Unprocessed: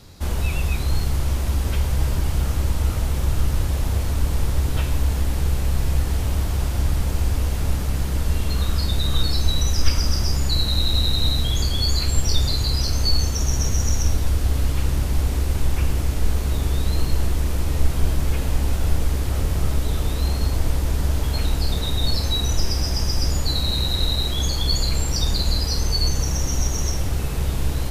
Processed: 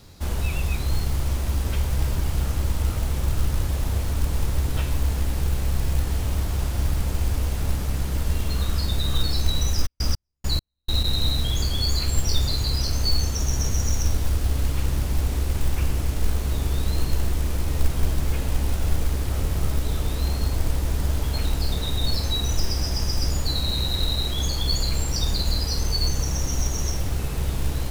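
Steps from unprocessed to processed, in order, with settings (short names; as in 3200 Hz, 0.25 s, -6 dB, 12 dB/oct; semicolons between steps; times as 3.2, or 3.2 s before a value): companded quantiser 6-bit; 9.85–11.03 step gate "..x.x..x" 102 bpm -60 dB; gain -2.5 dB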